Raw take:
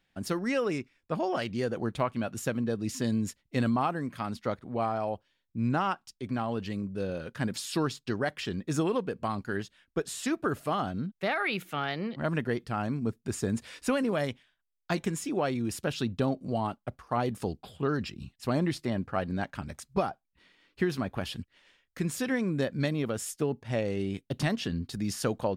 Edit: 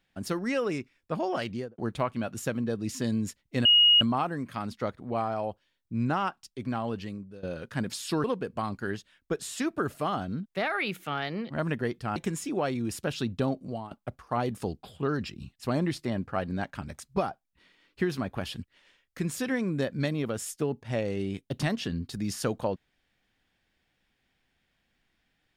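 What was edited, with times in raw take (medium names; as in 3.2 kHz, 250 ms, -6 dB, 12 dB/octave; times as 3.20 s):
1.49–1.78 s: studio fade out
3.65 s: add tone 2.88 kHz -15.5 dBFS 0.36 s
6.55–7.07 s: fade out, to -19 dB
7.88–8.90 s: delete
12.82–14.96 s: delete
16.37–16.71 s: fade out linear, to -16 dB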